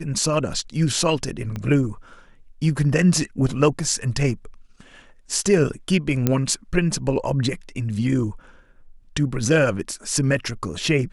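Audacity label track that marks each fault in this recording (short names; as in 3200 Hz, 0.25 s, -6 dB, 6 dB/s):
1.560000	1.560000	pop -17 dBFS
6.270000	6.270000	pop -5 dBFS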